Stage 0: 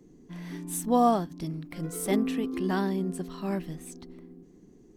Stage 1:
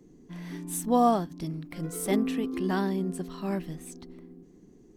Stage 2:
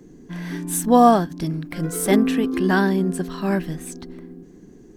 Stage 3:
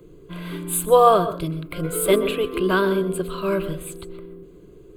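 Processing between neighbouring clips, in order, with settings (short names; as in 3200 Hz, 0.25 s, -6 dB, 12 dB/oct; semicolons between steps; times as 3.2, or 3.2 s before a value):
nothing audible
bell 1600 Hz +8.5 dB 0.21 oct; gain +9 dB
fixed phaser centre 1200 Hz, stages 8; on a send at -12 dB: reverb RT60 0.30 s, pre-delay 0.117 s; on the sum: gain +4.5 dB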